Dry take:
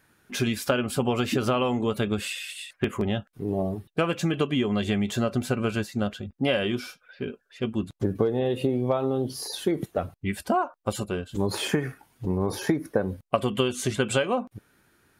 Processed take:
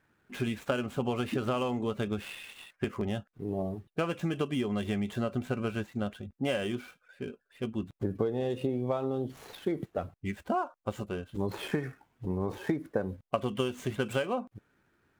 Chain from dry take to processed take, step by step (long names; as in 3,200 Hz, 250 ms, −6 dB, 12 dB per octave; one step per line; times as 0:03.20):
running median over 9 samples
level −6 dB